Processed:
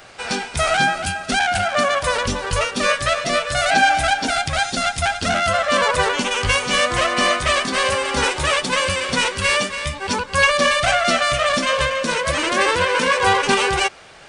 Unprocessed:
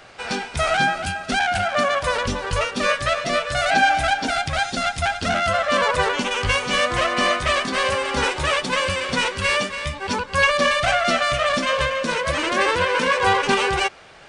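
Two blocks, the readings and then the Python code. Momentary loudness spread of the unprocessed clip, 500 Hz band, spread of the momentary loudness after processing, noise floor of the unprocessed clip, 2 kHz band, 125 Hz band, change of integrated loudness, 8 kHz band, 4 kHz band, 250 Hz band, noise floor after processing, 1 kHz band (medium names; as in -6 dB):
5 LU, +1.5 dB, 5 LU, -37 dBFS, +2.0 dB, +1.5 dB, +2.0 dB, +6.0 dB, +3.0 dB, +1.5 dB, -35 dBFS, +1.5 dB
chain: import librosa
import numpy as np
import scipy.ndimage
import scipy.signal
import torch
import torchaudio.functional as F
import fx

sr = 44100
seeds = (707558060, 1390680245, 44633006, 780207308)

y = fx.high_shelf(x, sr, hz=7300.0, db=9.5)
y = y * librosa.db_to_amplitude(1.5)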